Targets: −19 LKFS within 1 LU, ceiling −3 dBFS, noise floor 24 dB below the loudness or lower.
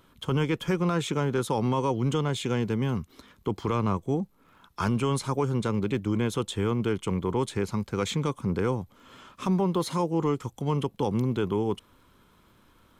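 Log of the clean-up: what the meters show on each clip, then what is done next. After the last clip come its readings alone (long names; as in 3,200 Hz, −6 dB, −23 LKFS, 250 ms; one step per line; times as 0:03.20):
crackle rate 22 per second; integrated loudness −28.0 LKFS; sample peak −15.5 dBFS; target loudness −19.0 LKFS
→ click removal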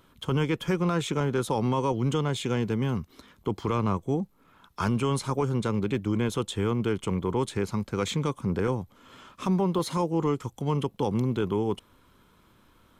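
crackle rate 0 per second; integrated loudness −28.0 LKFS; sample peak −15.5 dBFS; target loudness −19.0 LKFS
→ level +9 dB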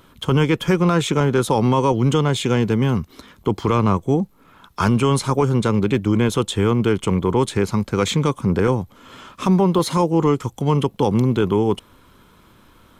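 integrated loudness −19.0 LKFS; sample peak −6.5 dBFS; background noise floor −52 dBFS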